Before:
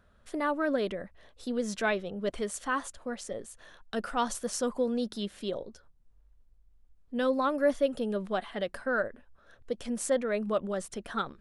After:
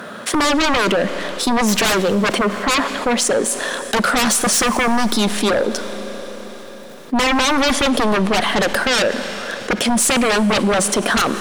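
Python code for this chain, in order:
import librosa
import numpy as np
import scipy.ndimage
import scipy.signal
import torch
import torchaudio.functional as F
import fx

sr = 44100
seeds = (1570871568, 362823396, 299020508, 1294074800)

p1 = fx.lowpass(x, sr, hz=fx.line((2.37, 1400.0), (2.99, 3200.0)), slope=24, at=(2.37, 2.99), fade=0.02)
p2 = fx.leveller(p1, sr, passes=1)
p3 = scipy.signal.sosfilt(scipy.signal.butter(4, 190.0, 'highpass', fs=sr, output='sos'), p2)
p4 = fx.fold_sine(p3, sr, drive_db=18, ceiling_db=-12.0)
p5 = p3 + (p4 * 10.0 ** (-3.0 / 20.0))
p6 = fx.rev_schroeder(p5, sr, rt60_s=2.8, comb_ms=30, drr_db=15.5)
y = fx.env_flatten(p6, sr, amount_pct=50)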